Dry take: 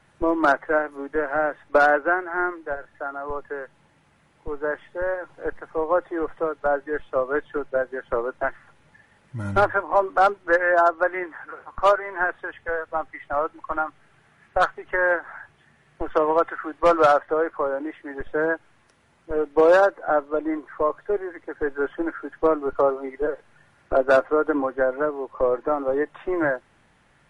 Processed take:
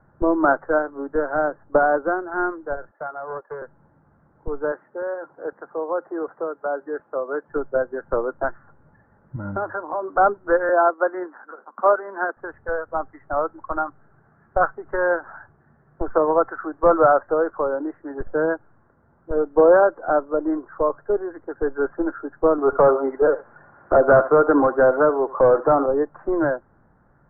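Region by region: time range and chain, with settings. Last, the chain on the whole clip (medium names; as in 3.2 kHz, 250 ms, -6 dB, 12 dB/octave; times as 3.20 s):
1.48–2.32 s: low-pass 1.1 kHz 6 dB/octave + loudspeaker Doppler distortion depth 0.11 ms
2.91–3.62 s: high-pass 420 Hz 24 dB/octave + distance through air 230 m + loudspeaker Doppler distortion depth 0.25 ms
4.72–7.49 s: high-pass 250 Hz + compression 1.5:1, threshold -30 dBFS
9.36–10.16 s: high-pass 240 Hz 6 dB/octave + compression 5:1, threshold -23 dBFS
10.69–12.37 s: companding laws mixed up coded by A + steep high-pass 200 Hz 72 dB/octave
22.58–25.86 s: delay 77 ms -21 dB + overdrive pedal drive 18 dB, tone 2.5 kHz, clips at -8 dBFS
whole clip: elliptic low-pass 1.5 kHz, stop band 60 dB; bass shelf 410 Hz +6 dB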